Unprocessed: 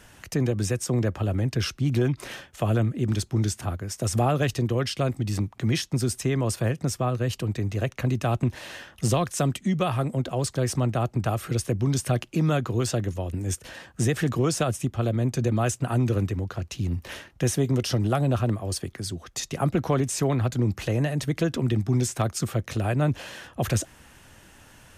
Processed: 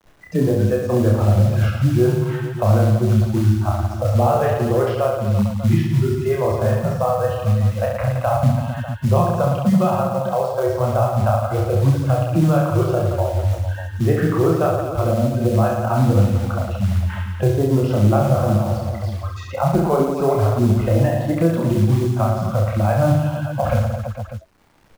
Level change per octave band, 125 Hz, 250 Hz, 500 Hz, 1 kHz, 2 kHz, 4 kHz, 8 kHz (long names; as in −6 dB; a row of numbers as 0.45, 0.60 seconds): +8.0, +6.5, +10.0, +9.5, +3.0, −3.0, −6.5 decibels